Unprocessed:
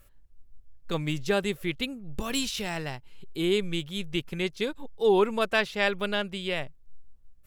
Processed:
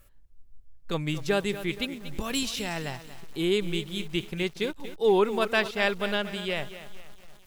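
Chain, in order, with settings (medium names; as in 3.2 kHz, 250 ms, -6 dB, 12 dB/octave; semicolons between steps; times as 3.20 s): bit-crushed delay 235 ms, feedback 55%, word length 7-bit, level -12.5 dB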